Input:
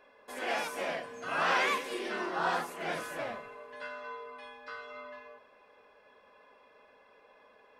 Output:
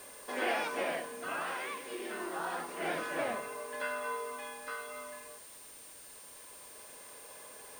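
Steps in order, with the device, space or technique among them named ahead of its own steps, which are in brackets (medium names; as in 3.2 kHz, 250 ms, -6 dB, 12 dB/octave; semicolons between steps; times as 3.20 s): medium wave at night (band-pass 160–4200 Hz; compression, threshold -33 dBFS, peak gain reduction 9 dB; tremolo 0.26 Hz, depth 67%; whistle 9 kHz -58 dBFS; white noise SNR 15 dB); peaking EQ 320 Hz +3.5 dB 0.52 oct; trim +5.5 dB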